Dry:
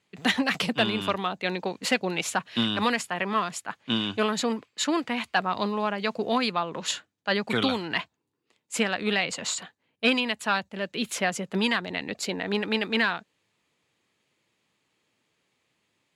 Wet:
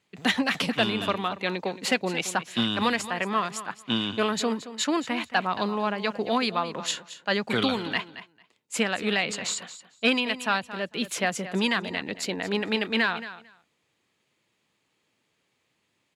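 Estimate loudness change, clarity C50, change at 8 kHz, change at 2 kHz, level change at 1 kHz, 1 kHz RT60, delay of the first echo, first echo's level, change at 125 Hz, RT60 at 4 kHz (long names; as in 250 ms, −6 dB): 0.0 dB, no reverb audible, 0.0 dB, 0.0 dB, 0.0 dB, no reverb audible, 224 ms, −14.0 dB, 0.0 dB, no reverb audible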